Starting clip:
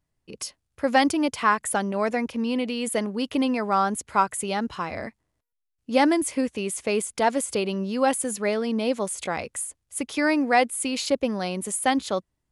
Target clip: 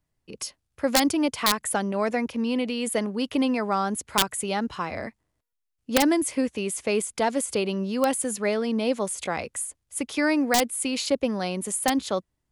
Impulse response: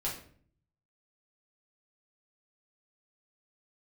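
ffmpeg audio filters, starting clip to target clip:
-filter_complex "[0:a]aeval=exprs='(mod(3.16*val(0)+1,2)-1)/3.16':c=same,acrossover=split=460|3000[a][b][c];[b]acompressor=threshold=-22dB:ratio=6[d];[a][d][c]amix=inputs=3:normalize=0"

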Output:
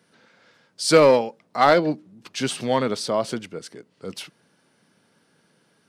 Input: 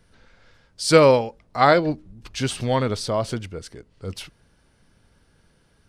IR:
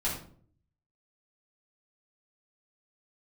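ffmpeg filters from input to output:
-filter_complex "[0:a]highpass=f=160:w=0.5412,highpass=f=160:w=1.3066,asplit=2[a][b];[b]aeval=exprs='0.251*(abs(mod(val(0)/0.251+3,4)-2)-1)':c=same,volume=-10.5dB[c];[a][c]amix=inputs=2:normalize=0,volume=-1.5dB"

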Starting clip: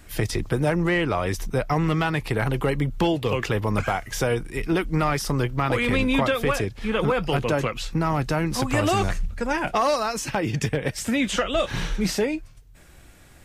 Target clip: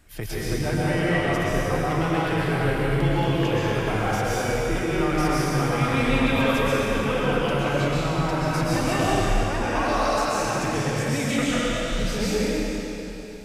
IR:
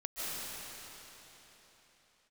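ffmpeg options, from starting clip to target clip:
-filter_complex "[0:a]asettb=1/sr,asplit=3[a][b][c];[a]atrim=end=11.454[d];[b]atrim=start=11.45:end=11.97,asetpts=PTS-STARTPTS,afade=t=in:d=0.004:c=qsin,afade=t=out:st=0.516:d=0.004:c=qsin,acrossover=split=380|3000[e][f][g];[f]acompressor=threshold=-41dB:ratio=2.5[h];[e][h][g]amix=inputs=3:normalize=0[i];[c]atrim=start=11.966[j];[d][i]acrossfade=d=0.004:c1=hsin:c2=qsin[k];[k][j]acrossfade=d=0.004:c1=qsin:c2=hsin[l];[1:a]atrim=start_sample=2205,asetrate=52920,aresample=44100[m];[l][m]afir=irnorm=-1:irlink=0,volume=-2dB"

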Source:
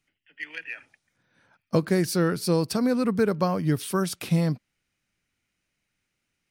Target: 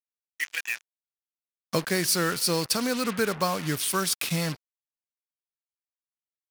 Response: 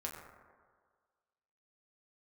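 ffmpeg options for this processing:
-filter_complex "[0:a]asplit=2[a][b];[1:a]atrim=start_sample=2205[c];[b][c]afir=irnorm=-1:irlink=0,volume=-20.5dB[d];[a][d]amix=inputs=2:normalize=0,acrusher=bits=5:mix=0:aa=0.5,tiltshelf=f=930:g=-7.5"

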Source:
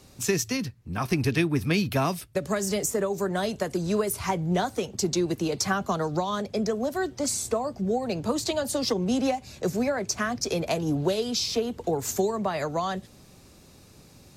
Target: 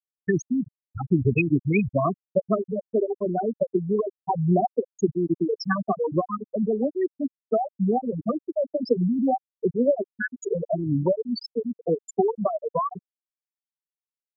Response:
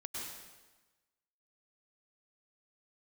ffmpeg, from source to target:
-af "afftfilt=real='re*pow(10,9/40*sin(2*PI*(1.2*log(max(b,1)*sr/1024/100)/log(2)-(2.4)*(pts-256)/sr)))':imag='im*pow(10,9/40*sin(2*PI*(1.2*log(max(b,1)*sr/1024/100)/log(2)-(2.4)*(pts-256)/sr)))':win_size=1024:overlap=0.75,afftfilt=real='re*gte(hypot(re,im),0.282)':imag='im*gte(hypot(re,im),0.282)':win_size=1024:overlap=0.75,volume=3.5dB"

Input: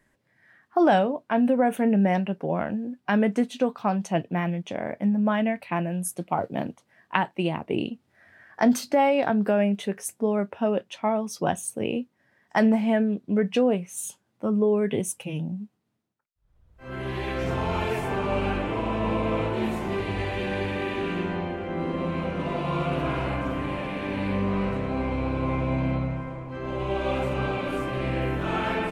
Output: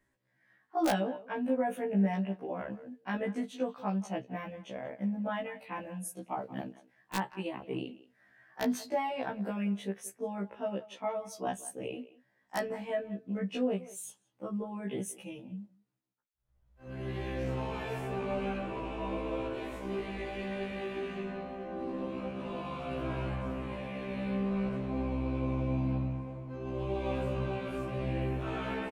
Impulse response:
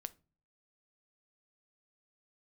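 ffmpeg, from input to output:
-filter_complex "[0:a]asplit=2[a][b];[b]adelay=180,highpass=300,lowpass=3.4k,asoftclip=type=hard:threshold=-11.5dB,volume=-17dB[c];[a][c]amix=inputs=2:normalize=0,aeval=exprs='(mod(3.16*val(0)+1,2)-1)/3.16':c=same,afftfilt=real='re*1.73*eq(mod(b,3),0)':imag='im*1.73*eq(mod(b,3),0)':win_size=2048:overlap=0.75,volume=-7.5dB"

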